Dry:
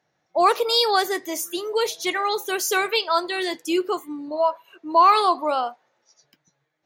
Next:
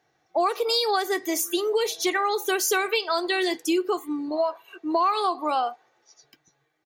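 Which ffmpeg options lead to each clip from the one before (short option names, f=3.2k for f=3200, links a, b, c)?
-af "aecho=1:1:2.6:0.49,acompressor=threshold=-23dB:ratio=6,volume=2.5dB"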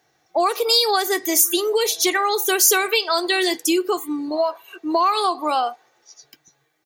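-af "highshelf=f=5k:g=10,volume=3.5dB"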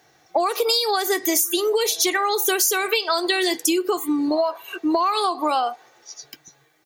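-af "acompressor=threshold=-25dB:ratio=6,volume=7dB"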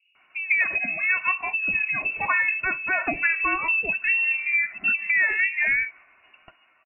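-filter_complex "[0:a]acrossover=split=460[a][b];[b]adelay=150[c];[a][c]amix=inputs=2:normalize=0,lowpass=f=2.6k:t=q:w=0.5098,lowpass=f=2.6k:t=q:w=0.6013,lowpass=f=2.6k:t=q:w=0.9,lowpass=f=2.6k:t=q:w=2.563,afreqshift=-3000"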